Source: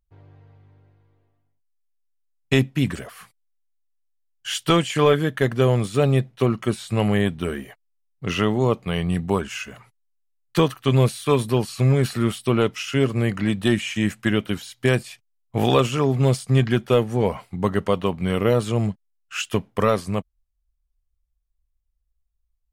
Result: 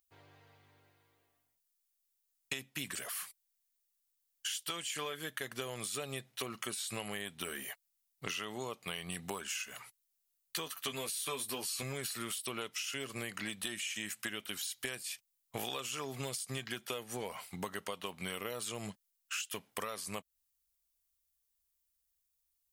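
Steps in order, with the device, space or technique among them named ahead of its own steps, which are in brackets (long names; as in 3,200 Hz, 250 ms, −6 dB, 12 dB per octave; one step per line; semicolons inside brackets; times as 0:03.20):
spectral tilt +4.5 dB per octave
serial compression, peaks first (downward compressor 6 to 1, threshold −29 dBFS, peak gain reduction 15.5 dB; downward compressor 2 to 1, threshold −37 dBFS, peak gain reduction 7 dB)
0:10.65–0:11.83: double-tracking delay 12 ms −5 dB
level −2.5 dB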